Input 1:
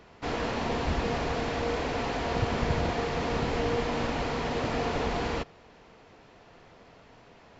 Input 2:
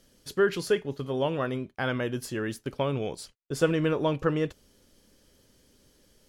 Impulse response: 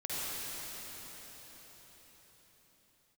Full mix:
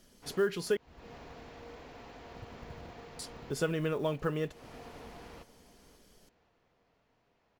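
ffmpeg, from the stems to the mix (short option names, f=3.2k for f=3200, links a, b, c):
-filter_complex "[0:a]acrusher=bits=8:mode=log:mix=0:aa=0.000001,volume=-19.5dB,asplit=2[a][b];[b]volume=-15.5dB[c];[1:a]aecho=1:1:4.8:0.31,acrusher=bits=8:mode=log:mix=0:aa=0.000001,volume=-1dB,asplit=3[d][e][f];[d]atrim=end=0.77,asetpts=PTS-STARTPTS,afade=t=out:st=0.766:d=0.004:c=hsin[g];[e]atrim=start=0.77:end=3.19,asetpts=PTS-STARTPTS,volume=0[h];[f]atrim=start=3.19,asetpts=PTS-STARTPTS,afade=t=in:d=0.004:c=hsin[i];[g][h][i]concat=n=3:v=0:a=1,asplit=2[j][k];[k]apad=whole_len=334971[l];[a][l]sidechaincompress=threshold=-29dB:ratio=10:attack=8.4:release=422[m];[c]aecho=0:1:534|1068|1602|2136|2670:1|0.35|0.122|0.0429|0.015[n];[m][j][n]amix=inputs=3:normalize=0,acompressor=threshold=-37dB:ratio=1.5"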